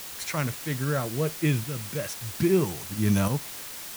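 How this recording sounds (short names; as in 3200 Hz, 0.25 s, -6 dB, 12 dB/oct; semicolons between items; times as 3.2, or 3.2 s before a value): tremolo saw up 0.61 Hz, depth 60%; a quantiser's noise floor 6-bit, dither triangular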